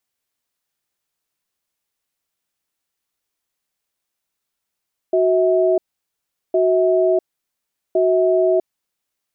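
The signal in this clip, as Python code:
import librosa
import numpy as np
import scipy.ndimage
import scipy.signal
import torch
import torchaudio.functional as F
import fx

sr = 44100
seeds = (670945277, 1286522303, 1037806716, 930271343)

y = fx.cadence(sr, length_s=3.72, low_hz=370.0, high_hz=646.0, on_s=0.65, off_s=0.76, level_db=-15.5)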